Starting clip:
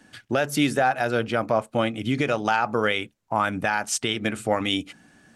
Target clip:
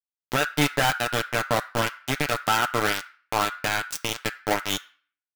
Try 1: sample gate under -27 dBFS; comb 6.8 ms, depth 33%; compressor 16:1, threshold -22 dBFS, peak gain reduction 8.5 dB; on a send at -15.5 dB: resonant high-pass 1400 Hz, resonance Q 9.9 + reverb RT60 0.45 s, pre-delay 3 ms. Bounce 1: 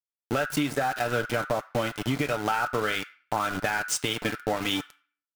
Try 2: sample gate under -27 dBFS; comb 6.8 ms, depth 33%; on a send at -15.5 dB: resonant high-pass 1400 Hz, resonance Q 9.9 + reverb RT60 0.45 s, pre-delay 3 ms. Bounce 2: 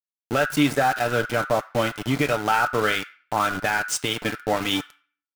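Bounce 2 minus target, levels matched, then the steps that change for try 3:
sample gate: distortion -11 dB
change: sample gate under -17 dBFS

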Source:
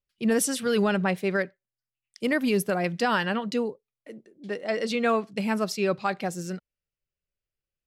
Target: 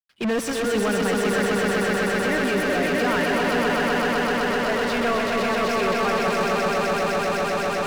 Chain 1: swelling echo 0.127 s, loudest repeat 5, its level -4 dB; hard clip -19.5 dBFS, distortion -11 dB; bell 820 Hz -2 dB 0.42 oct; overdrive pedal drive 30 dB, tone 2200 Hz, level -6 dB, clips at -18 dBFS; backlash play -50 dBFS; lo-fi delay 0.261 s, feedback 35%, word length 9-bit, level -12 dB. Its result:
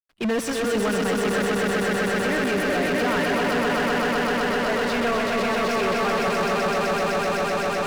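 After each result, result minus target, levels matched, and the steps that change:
hard clip: distortion +17 dB; backlash: distortion +9 dB
change: hard clip -12 dBFS, distortion -27 dB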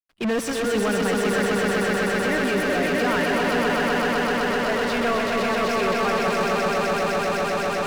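backlash: distortion +9 dB
change: backlash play -59 dBFS

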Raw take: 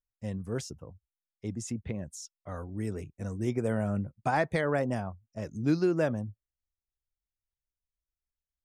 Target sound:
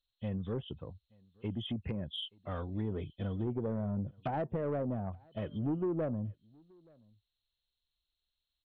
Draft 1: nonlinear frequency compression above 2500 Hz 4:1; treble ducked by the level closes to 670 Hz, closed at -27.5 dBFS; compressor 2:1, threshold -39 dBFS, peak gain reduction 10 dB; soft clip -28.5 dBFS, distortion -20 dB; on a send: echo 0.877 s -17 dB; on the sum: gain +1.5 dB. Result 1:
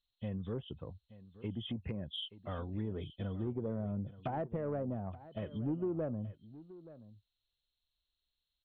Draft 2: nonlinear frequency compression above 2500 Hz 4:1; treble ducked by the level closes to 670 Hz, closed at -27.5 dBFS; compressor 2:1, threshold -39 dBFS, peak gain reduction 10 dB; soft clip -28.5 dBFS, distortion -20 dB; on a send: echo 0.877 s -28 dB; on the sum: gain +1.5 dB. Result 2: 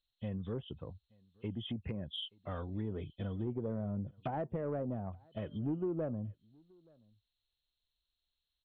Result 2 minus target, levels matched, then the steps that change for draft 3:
compressor: peak gain reduction +4 dB
change: compressor 2:1, threshold -31.5 dBFS, peak gain reduction 6 dB

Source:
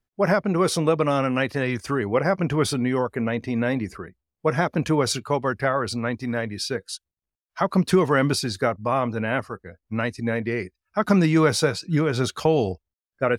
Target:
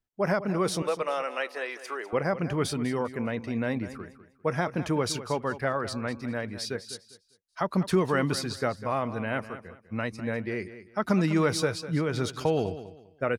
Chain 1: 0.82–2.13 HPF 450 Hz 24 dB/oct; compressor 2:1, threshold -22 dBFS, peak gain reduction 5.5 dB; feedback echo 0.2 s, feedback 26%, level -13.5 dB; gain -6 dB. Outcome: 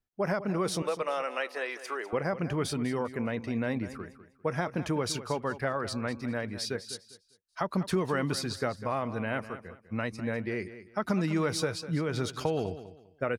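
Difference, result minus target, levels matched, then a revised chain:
compressor: peak gain reduction +5.5 dB
0.82–2.13 HPF 450 Hz 24 dB/oct; feedback echo 0.2 s, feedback 26%, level -13.5 dB; gain -6 dB

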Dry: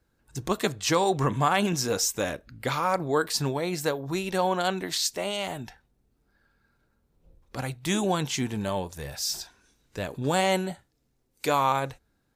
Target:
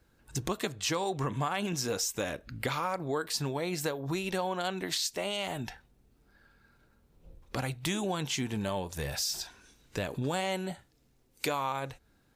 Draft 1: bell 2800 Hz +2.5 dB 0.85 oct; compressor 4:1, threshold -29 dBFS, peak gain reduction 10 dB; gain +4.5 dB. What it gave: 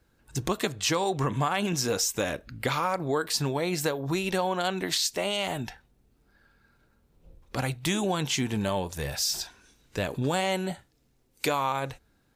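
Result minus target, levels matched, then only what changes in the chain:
compressor: peak gain reduction -5 dB
change: compressor 4:1, threshold -35.5 dBFS, peak gain reduction 15 dB

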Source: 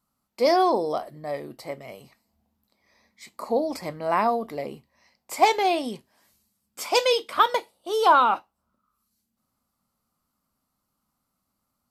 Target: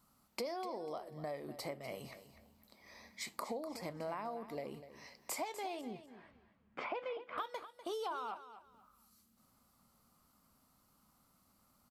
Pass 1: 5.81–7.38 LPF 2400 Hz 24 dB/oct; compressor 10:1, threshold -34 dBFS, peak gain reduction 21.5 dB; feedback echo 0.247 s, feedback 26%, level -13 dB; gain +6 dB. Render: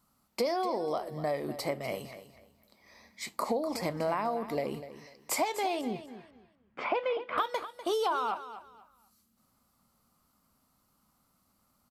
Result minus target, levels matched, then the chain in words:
compressor: peak gain reduction -11 dB
5.81–7.38 LPF 2400 Hz 24 dB/oct; compressor 10:1, threshold -46 dBFS, peak gain reduction 32.5 dB; feedback echo 0.247 s, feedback 26%, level -13 dB; gain +6 dB

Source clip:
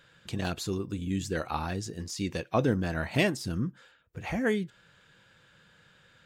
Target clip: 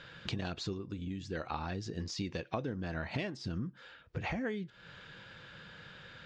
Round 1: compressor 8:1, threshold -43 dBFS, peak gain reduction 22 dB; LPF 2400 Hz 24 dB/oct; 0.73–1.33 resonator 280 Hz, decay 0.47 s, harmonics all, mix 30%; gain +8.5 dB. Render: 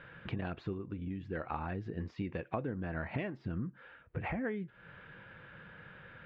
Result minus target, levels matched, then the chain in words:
4000 Hz band -12.5 dB
compressor 8:1, threshold -43 dBFS, peak gain reduction 22 dB; LPF 5400 Hz 24 dB/oct; 0.73–1.33 resonator 280 Hz, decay 0.47 s, harmonics all, mix 30%; gain +8.5 dB

